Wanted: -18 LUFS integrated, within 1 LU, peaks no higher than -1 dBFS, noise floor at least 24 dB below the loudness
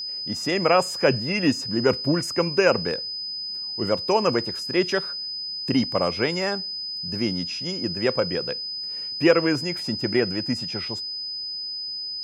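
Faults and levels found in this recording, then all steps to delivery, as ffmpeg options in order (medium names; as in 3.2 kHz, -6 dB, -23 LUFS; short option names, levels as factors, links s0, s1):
steady tone 5 kHz; tone level -29 dBFS; loudness -24.0 LUFS; peak level -4.5 dBFS; loudness target -18.0 LUFS
-> -af "bandreject=f=5000:w=30"
-af "volume=2,alimiter=limit=0.891:level=0:latency=1"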